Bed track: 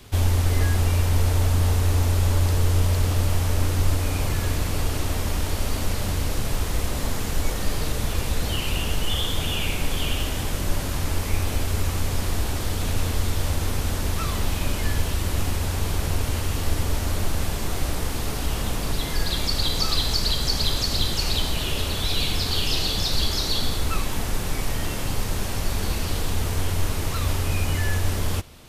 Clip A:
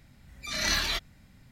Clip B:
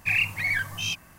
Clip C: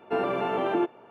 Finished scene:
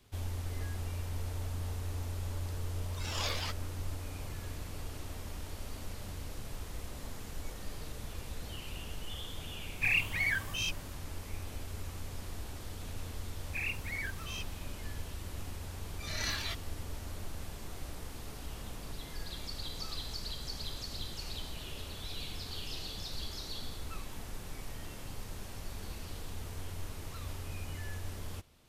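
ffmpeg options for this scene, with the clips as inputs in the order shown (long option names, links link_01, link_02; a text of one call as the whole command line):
ffmpeg -i bed.wav -i cue0.wav -i cue1.wav -filter_complex "[1:a]asplit=2[link_01][link_02];[2:a]asplit=2[link_03][link_04];[0:a]volume=-17.5dB[link_05];[link_01]aeval=exprs='val(0)*sin(2*PI*1000*n/s+1000*0.5/1.9*sin(2*PI*1.9*n/s))':channel_layout=same,atrim=end=1.51,asetpts=PTS-STARTPTS,volume=-6.5dB,afade=type=in:duration=0.004:curve=hsin,afade=type=out:start_time=1.506:duration=0.004:curve=hsin,adelay=2530[link_06];[link_03]atrim=end=1.18,asetpts=PTS-STARTPTS,volume=-5.5dB,afade=type=in:duration=0.004:curve=hsin,afade=type=out:start_time=1.176:duration=0.004:curve=hsin,adelay=9760[link_07];[link_04]atrim=end=1.18,asetpts=PTS-STARTPTS,volume=-13.5dB,afade=type=in:duration=0.004:curve=hsin,afade=type=out:start_time=1.176:duration=0.004:curve=hsin,adelay=594468S[link_08];[link_02]atrim=end=1.51,asetpts=PTS-STARTPTS,volume=-9dB,afade=type=in:duration=0.004:curve=hsin,afade=type=out:start_time=1.506:duration=0.004:curve=hsin,adelay=686196S[link_09];[link_05][link_06][link_07][link_08][link_09]amix=inputs=5:normalize=0" out.wav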